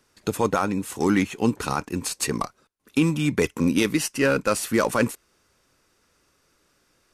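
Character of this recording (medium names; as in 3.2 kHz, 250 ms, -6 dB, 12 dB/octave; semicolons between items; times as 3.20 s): noise floor -67 dBFS; spectral tilt -5.0 dB/octave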